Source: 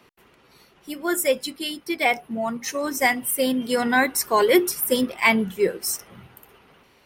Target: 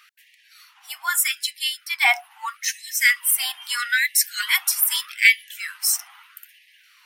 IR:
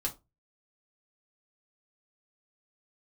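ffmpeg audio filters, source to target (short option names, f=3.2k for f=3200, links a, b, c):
-af "asubboost=boost=10.5:cutoff=200,afftfilt=real='re*gte(b*sr/1024,660*pow(1700/660,0.5+0.5*sin(2*PI*0.79*pts/sr)))':imag='im*gte(b*sr/1024,660*pow(1700/660,0.5+0.5*sin(2*PI*0.79*pts/sr)))':win_size=1024:overlap=0.75,volume=6dB"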